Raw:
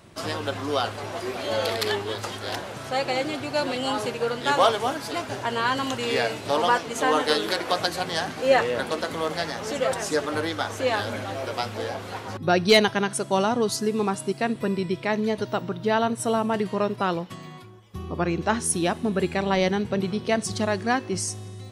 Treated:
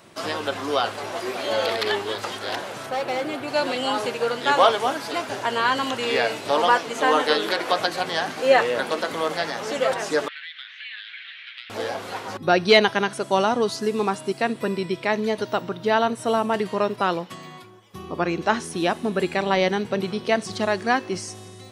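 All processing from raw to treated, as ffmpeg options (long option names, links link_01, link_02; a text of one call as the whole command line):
ffmpeg -i in.wav -filter_complex "[0:a]asettb=1/sr,asplit=3[link_01][link_02][link_03];[link_01]atrim=end=2.864[link_04];[link_02]atrim=start=2.86:end=3.48,asetpts=PTS-STARTPTS,afade=type=in:duration=0.004:curve=qsin,afade=type=out:start_time=0.616:duration=0.004:curve=qsin,equalizer=frequency=5900:width=0.67:gain=-9.5,asoftclip=type=hard:threshold=-24dB[link_05];[link_03]atrim=start=3.476[link_06];[link_04][link_05]acrossfade=duration=0.004:curve1=hsin:curve2=qsin[link_07];[link_07][link_06]acrossfade=duration=0.004:curve1=qsin:curve2=hsin,asettb=1/sr,asplit=3[link_08][link_09][link_10];[link_08]atrim=end=10.284[link_11];[link_09]atrim=start=10.28:end=11.7,asetpts=PTS-STARTPTS,afade=type=in:duration=0.004:curve=qsin,afade=type=out:start_time=1.416:duration=0.004:curve=qsin,asuperpass=centerf=2600:order=8:qfactor=1.2,acompressor=threshold=-36dB:ratio=6:attack=3.2:release=140:knee=1:detection=peak[link_12];[link_10]atrim=start=11.696[link_13];[link_11][link_12]acrossfade=duration=0.004:curve1=hsin:curve2=qsin[link_14];[link_14][link_13]acrossfade=duration=0.004:curve1=qsin:curve2=hsin,lowshelf=frequency=190:gain=-9.5,acrossover=split=4500[link_15][link_16];[link_16]acompressor=threshold=-42dB:ratio=4:attack=1:release=60[link_17];[link_15][link_17]amix=inputs=2:normalize=0,equalizer=frequency=62:width_type=o:width=0.96:gain=-11,volume=3.5dB" out.wav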